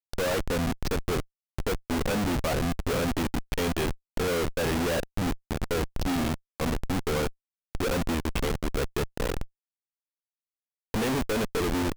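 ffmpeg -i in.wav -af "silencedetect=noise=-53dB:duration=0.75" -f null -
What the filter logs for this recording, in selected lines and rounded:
silence_start: 9.47
silence_end: 10.94 | silence_duration: 1.47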